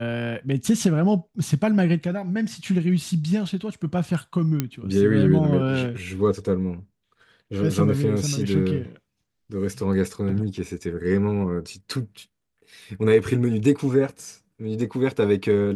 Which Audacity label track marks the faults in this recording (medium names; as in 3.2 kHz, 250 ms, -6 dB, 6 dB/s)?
4.600000	4.600000	pop -9 dBFS